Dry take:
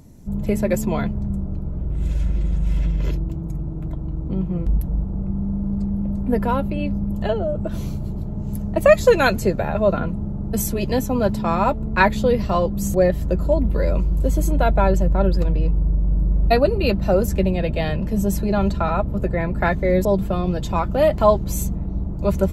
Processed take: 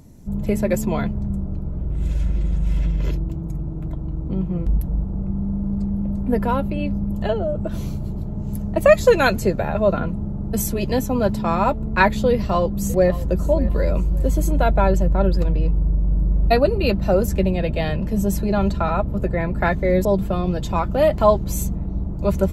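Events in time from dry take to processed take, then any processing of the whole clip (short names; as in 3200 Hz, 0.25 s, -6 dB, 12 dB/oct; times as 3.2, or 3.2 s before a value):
12.31–13.46 echo throw 0.58 s, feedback 30%, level -16 dB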